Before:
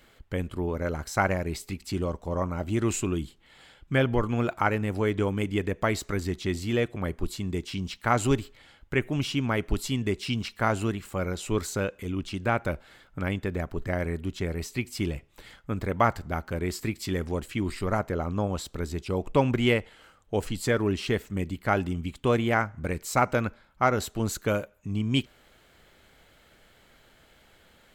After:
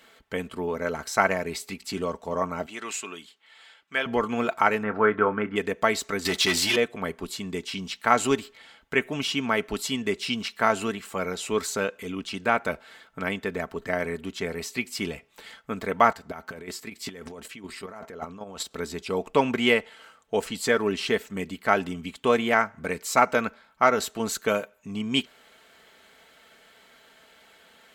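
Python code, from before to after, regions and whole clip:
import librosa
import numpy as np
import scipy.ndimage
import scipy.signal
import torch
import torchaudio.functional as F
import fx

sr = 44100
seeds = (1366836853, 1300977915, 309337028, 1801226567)

y = fx.chain(x, sr, fx.highpass(hz=1300.0, slope=6),
    fx.high_shelf(hz=6200.0, db=-8.0), at=(2.66, 4.06))
y = fx.chain(y, sr, fx.lowpass_res(hz=1400.0, q=4.5),
    fx.doubler(ms=28.0, db=-12.5), at=(4.83, 5.56))
y = fx.chain(y, sr, fx.tilt_shelf(db=-5.5, hz=890.0),
    fx.leveller(passes=3),
    fx.notch_comb(f0_hz=230.0), at=(6.25, 6.76))
y = fx.chain(y, sr, fx.over_compress(threshold_db=-32.0, ratio=-1.0),
    fx.chopper(hz=5.2, depth_pct=60, duty_pct=15), at=(16.1, 18.71))
y = fx.highpass(y, sr, hz=480.0, slope=6)
y = fx.high_shelf(y, sr, hz=10000.0, db=-4.5)
y = y + 0.45 * np.pad(y, (int(4.5 * sr / 1000.0), 0))[:len(y)]
y = y * 10.0 ** (4.5 / 20.0)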